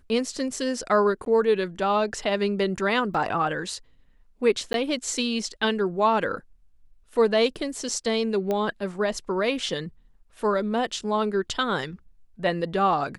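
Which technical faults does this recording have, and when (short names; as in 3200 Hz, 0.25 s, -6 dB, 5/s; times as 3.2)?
1.25–1.26 gap 12 ms
3.14 gap 4.1 ms
4.73–4.74 gap 12 ms
8.51 pop -15 dBFS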